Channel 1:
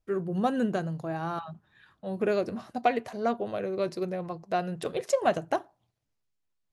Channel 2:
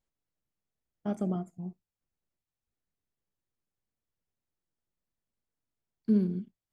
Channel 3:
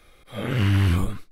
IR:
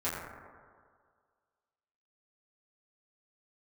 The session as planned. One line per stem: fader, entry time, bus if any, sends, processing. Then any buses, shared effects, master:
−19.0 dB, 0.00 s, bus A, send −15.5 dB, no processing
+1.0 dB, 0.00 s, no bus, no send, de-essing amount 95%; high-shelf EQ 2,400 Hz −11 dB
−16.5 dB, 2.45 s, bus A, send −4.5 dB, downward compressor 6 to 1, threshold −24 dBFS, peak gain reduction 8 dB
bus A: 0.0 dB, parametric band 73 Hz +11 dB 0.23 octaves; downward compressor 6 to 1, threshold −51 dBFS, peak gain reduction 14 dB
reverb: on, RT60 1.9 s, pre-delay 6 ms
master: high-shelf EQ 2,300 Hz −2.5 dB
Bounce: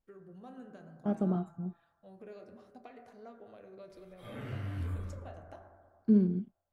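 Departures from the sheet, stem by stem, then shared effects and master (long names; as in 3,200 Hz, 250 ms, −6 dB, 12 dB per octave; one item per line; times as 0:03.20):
stem 3: entry 2.45 s → 3.90 s
master: missing high-shelf EQ 2,300 Hz −2.5 dB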